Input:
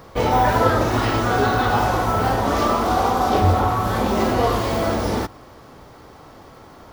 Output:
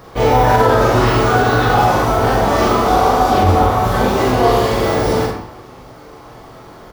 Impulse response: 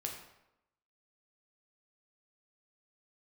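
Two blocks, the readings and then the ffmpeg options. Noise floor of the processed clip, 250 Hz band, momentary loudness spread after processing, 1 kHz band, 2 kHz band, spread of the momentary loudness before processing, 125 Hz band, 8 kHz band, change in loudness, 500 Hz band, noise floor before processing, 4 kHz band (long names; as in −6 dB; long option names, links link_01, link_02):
−39 dBFS, +4.5 dB, 4 LU, +5.5 dB, +5.5 dB, 4 LU, +5.5 dB, +5.0 dB, +5.5 dB, +7.0 dB, −45 dBFS, +5.0 dB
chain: -filter_complex "[0:a]asplit=2[link_01][link_02];[link_02]adelay=43,volume=-4.5dB[link_03];[link_01][link_03]amix=inputs=2:normalize=0[link_04];[1:a]atrim=start_sample=2205[link_05];[link_04][link_05]afir=irnorm=-1:irlink=0,alimiter=level_in=5.5dB:limit=-1dB:release=50:level=0:latency=1,volume=-1dB"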